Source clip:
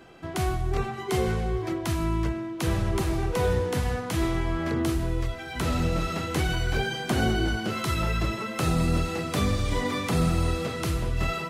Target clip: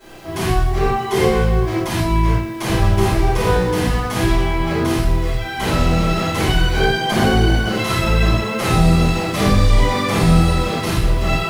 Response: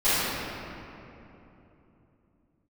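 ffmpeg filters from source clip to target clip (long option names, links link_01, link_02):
-filter_complex "[0:a]acrusher=bits=8:mix=0:aa=0.000001[link_01];[1:a]atrim=start_sample=2205,atrim=end_sample=6174[link_02];[link_01][link_02]afir=irnorm=-1:irlink=0,volume=-4dB"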